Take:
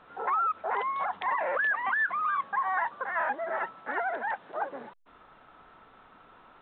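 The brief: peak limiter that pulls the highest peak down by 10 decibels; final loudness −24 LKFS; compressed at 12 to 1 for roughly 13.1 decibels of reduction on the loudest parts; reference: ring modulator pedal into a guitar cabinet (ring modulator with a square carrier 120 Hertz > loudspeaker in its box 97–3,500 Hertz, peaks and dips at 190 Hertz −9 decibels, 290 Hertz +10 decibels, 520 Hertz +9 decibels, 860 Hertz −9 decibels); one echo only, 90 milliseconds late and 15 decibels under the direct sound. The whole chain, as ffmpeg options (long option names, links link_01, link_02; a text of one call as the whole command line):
ffmpeg -i in.wav -af "acompressor=threshold=-38dB:ratio=12,alimiter=level_in=10.5dB:limit=-24dB:level=0:latency=1,volume=-10.5dB,aecho=1:1:90:0.178,aeval=exprs='val(0)*sgn(sin(2*PI*120*n/s))':channel_layout=same,highpass=97,equalizer=frequency=190:width_type=q:width=4:gain=-9,equalizer=frequency=290:width_type=q:width=4:gain=10,equalizer=frequency=520:width_type=q:width=4:gain=9,equalizer=frequency=860:width_type=q:width=4:gain=-9,lowpass=frequency=3500:width=0.5412,lowpass=frequency=3500:width=1.3066,volume=18dB" out.wav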